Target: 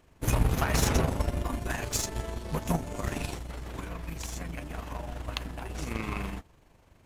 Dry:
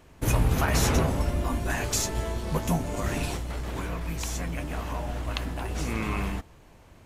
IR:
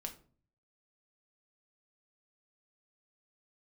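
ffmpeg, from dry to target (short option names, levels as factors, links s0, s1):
-af "aeval=exprs='0.266*(cos(1*acos(clip(val(0)/0.266,-1,1)))-cos(1*PI/2))+0.0168*(cos(7*acos(clip(val(0)/0.266,-1,1)))-cos(7*PI/2))':c=same,tremolo=f=24:d=0.462"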